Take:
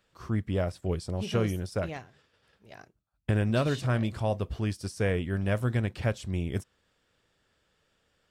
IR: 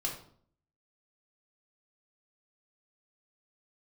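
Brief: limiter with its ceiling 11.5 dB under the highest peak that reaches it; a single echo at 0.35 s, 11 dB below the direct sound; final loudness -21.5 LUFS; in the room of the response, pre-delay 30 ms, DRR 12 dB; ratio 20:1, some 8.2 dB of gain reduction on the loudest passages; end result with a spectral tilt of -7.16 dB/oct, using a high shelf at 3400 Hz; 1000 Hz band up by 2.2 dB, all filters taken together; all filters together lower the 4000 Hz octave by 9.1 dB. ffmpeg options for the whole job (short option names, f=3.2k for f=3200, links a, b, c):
-filter_complex "[0:a]equalizer=f=1k:t=o:g=4.5,highshelf=f=3.4k:g=-8.5,equalizer=f=4k:t=o:g=-7.5,acompressor=threshold=-29dB:ratio=20,alimiter=level_in=6.5dB:limit=-24dB:level=0:latency=1,volume=-6.5dB,aecho=1:1:350:0.282,asplit=2[a][b];[1:a]atrim=start_sample=2205,adelay=30[c];[b][c]afir=irnorm=-1:irlink=0,volume=-15dB[d];[a][d]amix=inputs=2:normalize=0,volume=20dB"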